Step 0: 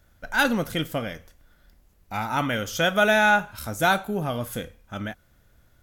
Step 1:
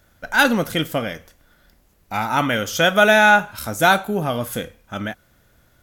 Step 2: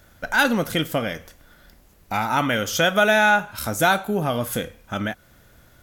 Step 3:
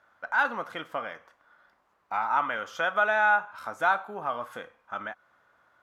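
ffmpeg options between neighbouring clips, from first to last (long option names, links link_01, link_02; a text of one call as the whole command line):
ffmpeg -i in.wav -af "lowshelf=frequency=85:gain=-9.5,volume=6dB" out.wav
ffmpeg -i in.wav -af "acompressor=threshold=-33dB:ratio=1.5,volume=4.5dB" out.wav
ffmpeg -i in.wav -af "bandpass=frequency=1100:width_type=q:width=2.4:csg=0" out.wav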